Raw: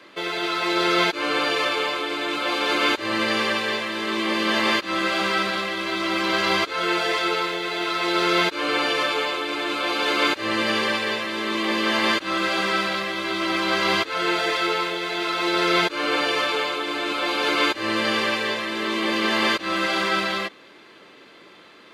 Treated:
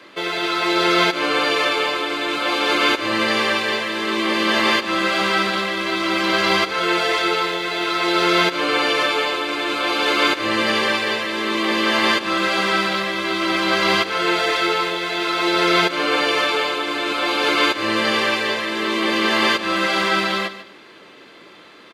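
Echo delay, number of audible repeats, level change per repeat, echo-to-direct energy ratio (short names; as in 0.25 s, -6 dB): 0.148 s, 2, -13.5 dB, -13.5 dB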